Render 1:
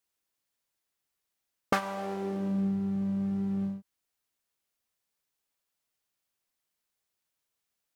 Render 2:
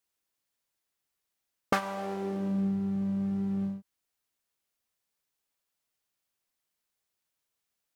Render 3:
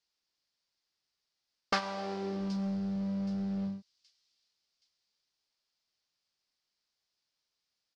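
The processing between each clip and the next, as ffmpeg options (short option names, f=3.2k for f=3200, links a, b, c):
-af anull
-filter_complex "[0:a]lowpass=f=4.9k:t=q:w=3.7,acrossover=split=580|3700[a][b][c];[a]volume=29dB,asoftclip=hard,volume=-29dB[d];[c]aecho=1:1:773|1546|2319|3092:0.282|0.113|0.0451|0.018[e];[d][b][e]amix=inputs=3:normalize=0,volume=-2.5dB"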